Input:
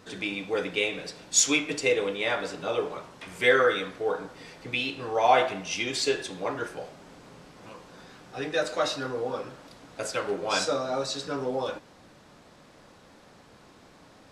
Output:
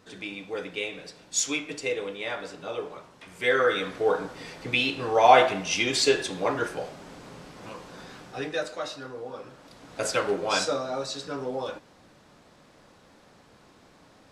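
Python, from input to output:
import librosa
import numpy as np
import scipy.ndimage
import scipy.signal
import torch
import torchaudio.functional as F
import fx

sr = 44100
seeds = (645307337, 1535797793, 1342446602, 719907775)

y = fx.gain(x, sr, db=fx.line((3.36, -5.0), (3.97, 4.5), (8.2, 4.5), (8.81, -7.0), (9.34, -7.0), (10.09, 5.0), (10.94, -2.0)))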